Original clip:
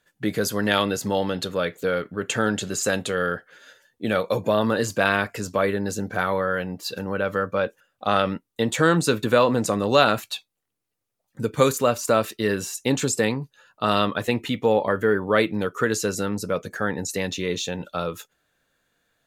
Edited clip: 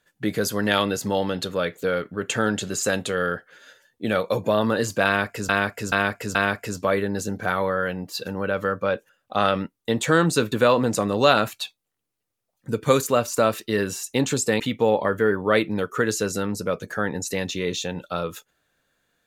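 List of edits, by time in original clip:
5.06–5.49 loop, 4 plays
13.31–14.43 cut

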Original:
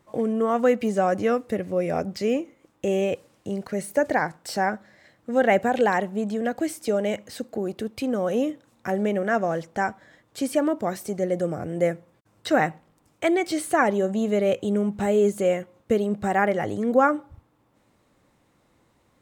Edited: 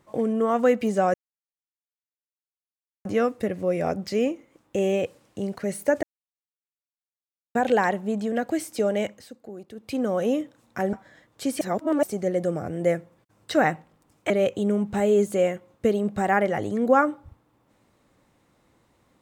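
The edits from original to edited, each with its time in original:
1.14 insert silence 1.91 s
4.12–5.64 mute
7.14–8.07 dip -11.5 dB, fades 0.23 s
9.02–9.89 cut
10.57–10.99 reverse
13.26–14.36 cut

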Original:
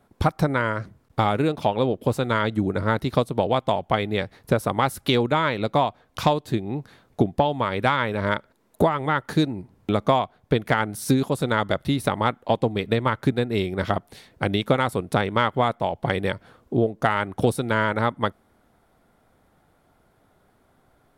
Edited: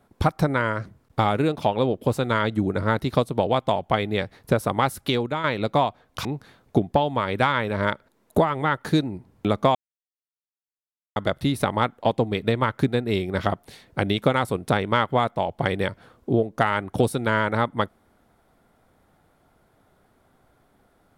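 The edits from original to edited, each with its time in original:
4.84–5.44 fade out, to -7.5 dB
6.25–6.69 cut
10.19–11.6 mute

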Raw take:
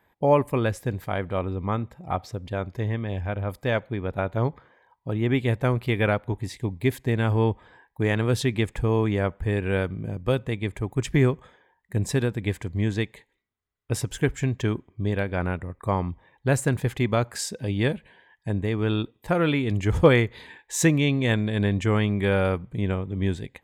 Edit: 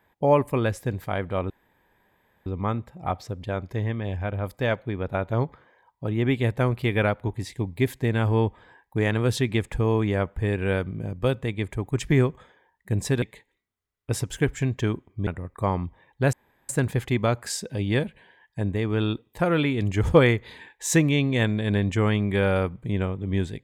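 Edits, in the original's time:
1.5 insert room tone 0.96 s
12.26–13.03 cut
15.08–15.52 cut
16.58 insert room tone 0.36 s

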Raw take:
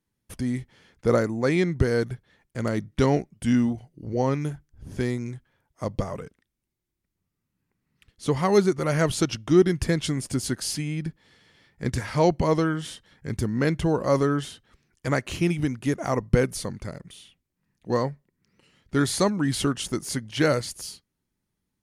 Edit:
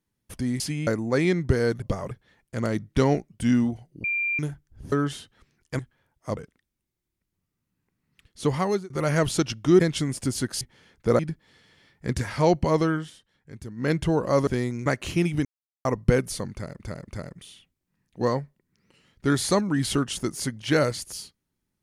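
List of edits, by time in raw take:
0.6–1.18 swap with 10.69–10.96
4.06–4.41 bleep 2380 Hz -23 dBFS
4.94–5.33 swap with 14.24–15.11
5.91–6.2 move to 2.13
8.38–8.73 fade out
9.63–9.88 cut
12.73–13.68 dip -12 dB, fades 0.15 s
15.7–16.1 mute
16.77–17.05 loop, 3 plays

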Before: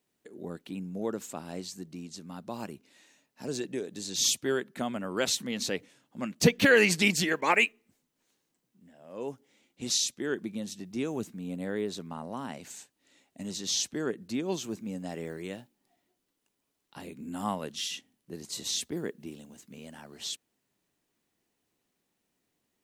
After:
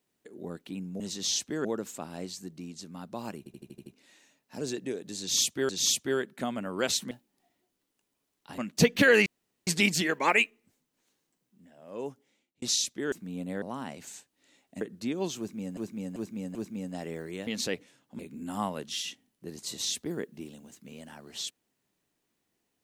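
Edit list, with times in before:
2.73 stutter 0.08 s, 7 plays
4.07–4.56 loop, 2 plays
5.49–6.21 swap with 15.58–17.05
6.89 insert room tone 0.41 s
9.27–9.84 fade out
10.34–11.24 cut
11.74–12.25 cut
13.44–14.09 move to 1
14.66–15.05 loop, 4 plays

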